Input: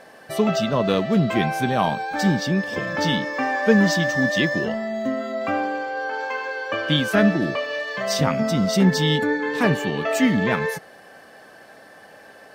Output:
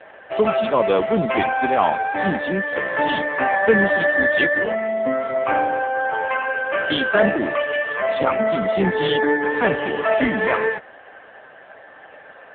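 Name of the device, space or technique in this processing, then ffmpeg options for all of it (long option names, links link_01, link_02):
telephone: -af "highpass=370,lowpass=3300,asoftclip=type=tanh:threshold=-12.5dB,volume=7.5dB" -ar 8000 -c:a libopencore_amrnb -b:a 5900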